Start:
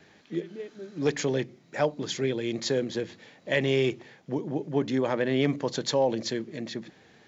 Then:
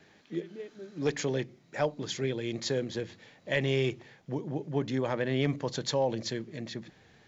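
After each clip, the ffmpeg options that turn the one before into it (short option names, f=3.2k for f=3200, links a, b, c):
-af "asubboost=boost=3:cutoff=130,volume=-3dB"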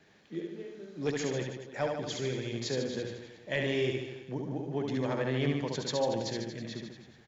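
-af "aecho=1:1:70|147|231.7|324.9|427.4:0.631|0.398|0.251|0.158|0.1,volume=-3.5dB"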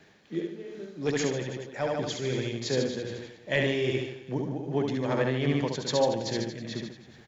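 -af "tremolo=f=2.5:d=0.44,volume=6dB"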